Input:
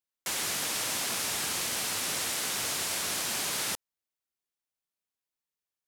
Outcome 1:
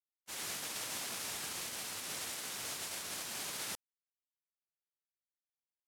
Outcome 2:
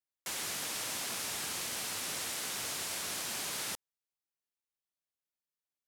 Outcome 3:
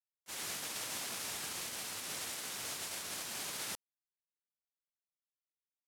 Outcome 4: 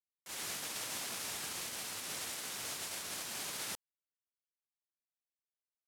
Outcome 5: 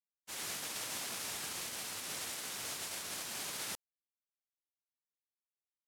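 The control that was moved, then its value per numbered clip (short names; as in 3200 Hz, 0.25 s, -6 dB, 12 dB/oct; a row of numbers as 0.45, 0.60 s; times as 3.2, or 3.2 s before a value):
gate, range: -45, -6, -32, -19, -60 dB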